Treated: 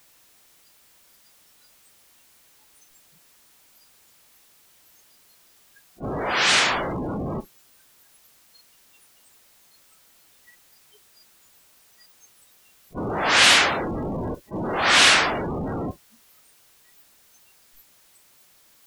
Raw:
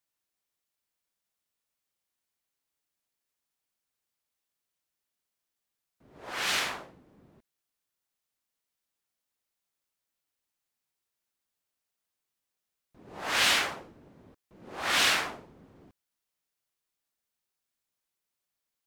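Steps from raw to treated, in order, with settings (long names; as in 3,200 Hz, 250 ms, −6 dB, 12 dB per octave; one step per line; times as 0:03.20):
converter with a step at zero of −30 dBFS
noise reduction from a noise print of the clip's start 28 dB
level that may rise only so fast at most 350 dB per second
level +8 dB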